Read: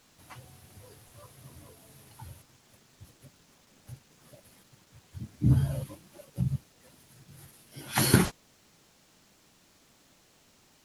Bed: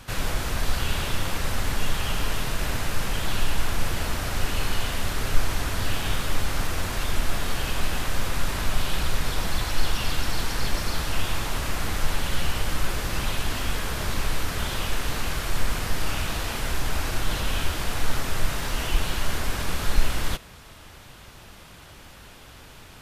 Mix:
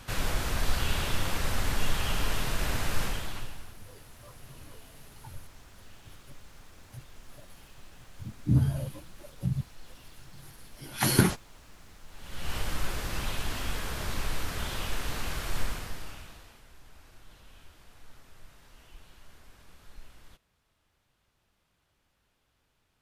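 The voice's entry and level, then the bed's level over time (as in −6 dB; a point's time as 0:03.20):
3.05 s, −0.5 dB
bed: 0:03.04 −3 dB
0:03.80 −26.5 dB
0:12.07 −26.5 dB
0:12.54 −6 dB
0:15.62 −6 dB
0:16.66 −28 dB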